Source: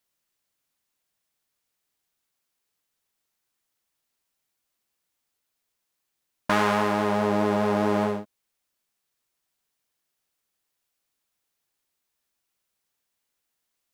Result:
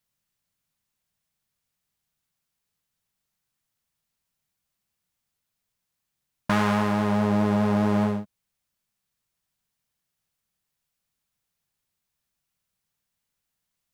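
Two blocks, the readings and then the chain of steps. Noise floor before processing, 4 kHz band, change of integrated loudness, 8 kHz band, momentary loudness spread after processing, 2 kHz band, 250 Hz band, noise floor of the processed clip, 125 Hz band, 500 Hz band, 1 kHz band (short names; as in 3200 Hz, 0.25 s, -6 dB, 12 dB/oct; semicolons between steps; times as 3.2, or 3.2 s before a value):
-80 dBFS, -2.0 dB, +0.5 dB, -2.0 dB, 5 LU, -2.0 dB, +4.0 dB, -82 dBFS, +6.0 dB, -3.5 dB, -2.5 dB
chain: resonant low shelf 230 Hz +8 dB, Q 1.5; gain -2 dB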